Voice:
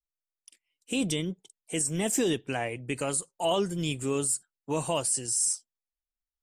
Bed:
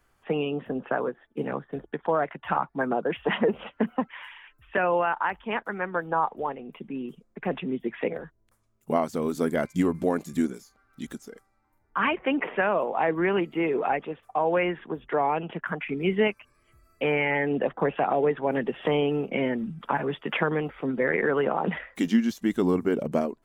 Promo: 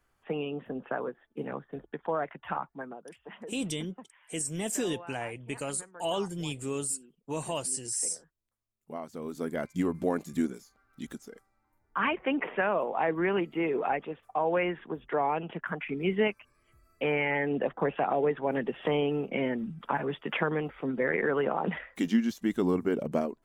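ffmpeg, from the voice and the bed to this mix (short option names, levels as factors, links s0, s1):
-filter_complex "[0:a]adelay=2600,volume=0.596[s0];[1:a]volume=3.76,afade=t=out:st=2.45:d=0.55:silence=0.177828,afade=t=in:st=8.75:d=1.35:silence=0.133352[s1];[s0][s1]amix=inputs=2:normalize=0"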